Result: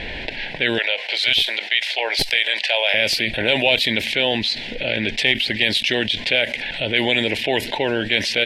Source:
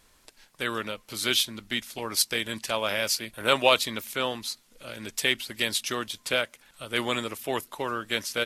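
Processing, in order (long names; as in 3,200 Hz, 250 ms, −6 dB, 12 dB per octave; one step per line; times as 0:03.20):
0:00.78–0:02.94: high-pass filter 570 Hz 24 dB per octave
low-pass that shuts in the quiet parts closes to 2,900 Hz, open at −22 dBFS
tilt shelving filter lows −9 dB, about 1,100 Hz
asymmetric clip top −9 dBFS
Butterworth band-reject 1,200 Hz, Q 1.1
high-frequency loss of the air 480 metres
envelope flattener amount 70%
level +7.5 dB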